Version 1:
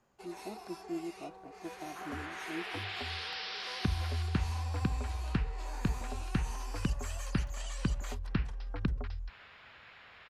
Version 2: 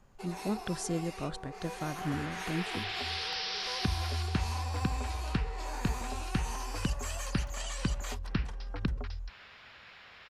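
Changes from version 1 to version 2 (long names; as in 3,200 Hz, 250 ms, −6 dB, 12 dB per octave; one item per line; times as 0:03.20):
speech: remove pair of resonant band-passes 490 Hz, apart 1 octave
first sound +5.5 dB
second sound: remove high-frequency loss of the air 170 metres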